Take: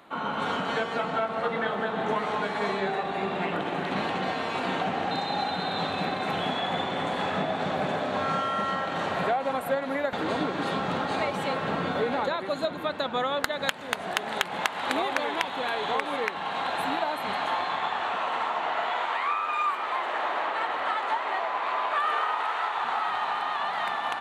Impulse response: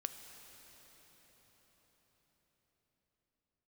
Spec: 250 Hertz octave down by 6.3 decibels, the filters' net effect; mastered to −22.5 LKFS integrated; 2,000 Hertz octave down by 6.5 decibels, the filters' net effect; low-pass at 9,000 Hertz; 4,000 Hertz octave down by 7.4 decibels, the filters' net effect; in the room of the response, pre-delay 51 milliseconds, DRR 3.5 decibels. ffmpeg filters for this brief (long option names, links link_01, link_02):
-filter_complex "[0:a]lowpass=9000,equalizer=frequency=250:width_type=o:gain=-8.5,equalizer=frequency=2000:width_type=o:gain=-7,equalizer=frequency=4000:width_type=o:gain=-6.5,asplit=2[link_01][link_02];[1:a]atrim=start_sample=2205,adelay=51[link_03];[link_02][link_03]afir=irnorm=-1:irlink=0,volume=-2dB[link_04];[link_01][link_04]amix=inputs=2:normalize=0,volume=7.5dB"